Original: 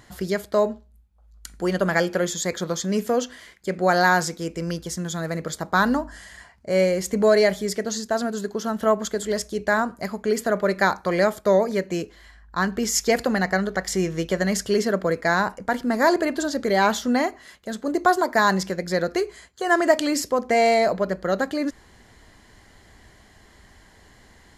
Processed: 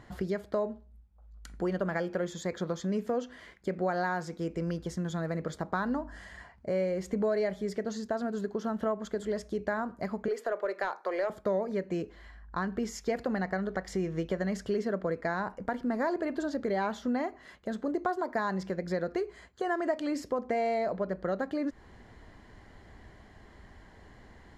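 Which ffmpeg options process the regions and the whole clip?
-filter_complex "[0:a]asettb=1/sr,asplit=3[a][b][c];[a]atrim=end=10.284[d];[b]atrim=start=10.28:end=11.3,asetpts=PTS-STARTPTS,afade=t=in:d=0.004:c=qsin,afade=t=out:st=1.016:d=0.004:c=qsin,highpass=f=380:w=0.5412,highpass=f=380:w=1.3066,aeval=exprs='(tanh(3.55*val(0)+0.05)-tanh(0.05))/3.55':c=same[e];[c]atrim=start=11.296[f];[d][e]acrossfade=d=0.004:c1=hsin:c2=qsin[g];[g][f]acrossfade=d=0.004:c1=qsin:c2=hsin,acompressor=threshold=-31dB:ratio=2.5,lowpass=f=1.4k:p=1"

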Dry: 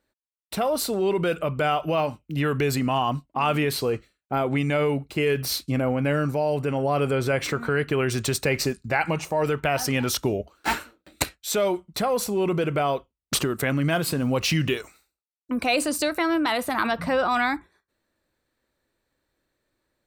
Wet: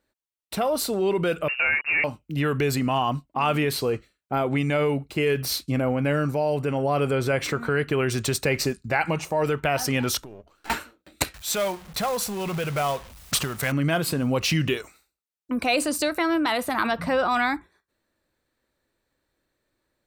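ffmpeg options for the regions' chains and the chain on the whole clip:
-filter_complex "[0:a]asettb=1/sr,asplit=3[a][b][c];[a]atrim=end=1.484[d];[b]atrim=start=1.48:end=2.04,asetpts=PTS-STARTPTS,afade=t=in:d=0.004:c=qsin,afade=t=out:st=0.556:d=0.004:c=qsin,acrusher=bits=4:mix=0:aa=0.5,lowpass=f=2.5k:t=q:w=0.5098,lowpass=f=2.5k:t=q:w=0.6013,lowpass=f=2.5k:t=q:w=0.9,lowpass=f=2.5k:t=q:w=2.563,afreqshift=-2900[e];[c]atrim=start=2.036[f];[d][e]acrossfade=d=0.004:c1=hsin:c2=qsin[g];[g][f]acrossfade=d=0.004:c1=qsin:c2=hsin,asettb=1/sr,asplit=3[h][i][j];[h]atrim=end=10.224[k];[i]atrim=start=10.22:end=10.7,asetpts=PTS-STARTPTS,afade=t=in:d=0.004:c=qsin,afade=t=out:st=0.476:d=0.004:c=qsin,aeval=exprs='if(lt(val(0),0),0.447*val(0),val(0))':c=same,acompressor=threshold=-43dB:ratio=3:attack=3.2:release=140:knee=1:detection=peak[l];[j]atrim=start=10.696[m];[k][l]acrossfade=d=0.004:c1=hsin:c2=qsin[n];[n][m]acrossfade=d=0.004:c1=qsin:c2=hsin,asettb=1/sr,asplit=3[o][p][q];[o]atrim=end=11.344[r];[p]atrim=start=11.34:end=13.72,asetpts=PTS-STARTPTS,afade=t=in:d=0.004:c=qsin,afade=t=out:st=2.376:d=0.004:c=qsin,aeval=exprs='val(0)+0.5*0.0133*sgn(val(0))':c=same,equalizer=f=330:t=o:w=0.98:g=-11.5,acrusher=bits=3:mode=log:mix=0:aa=0.000001[s];[q]atrim=start=13.716[t];[r][s]acrossfade=d=0.004:c1=hsin:c2=qsin[u];[u][t]acrossfade=d=0.004:c1=qsin:c2=hsin"

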